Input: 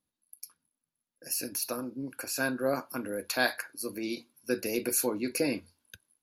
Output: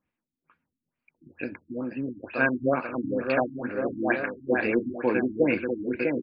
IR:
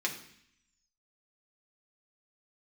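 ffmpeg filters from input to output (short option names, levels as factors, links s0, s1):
-af "highshelf=f=3100:t=q:w=3:g=-8.5,aecho=1:1:650|1138|1503|1777|1983:0.631|0.398|0.251|0.158|0.1,afftfilt=real='re*lt(b*sr/1024,330*pow(5100/330,0.5+0.5*sin(2*PI*2.2*pts/sr)))':imag='im*lt(b*sr/1024,330*pow(5100/330,0.5+0.5*sin(2*PI*2.2*pts/sr)))':win_size=1024:overlap=0.75,volume=1.88"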